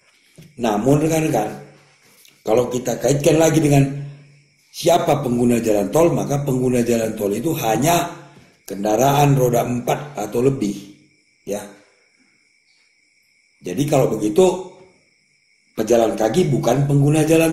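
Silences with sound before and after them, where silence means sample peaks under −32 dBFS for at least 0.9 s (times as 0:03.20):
0:11.69–0:13.65
0:14.68–0:15.78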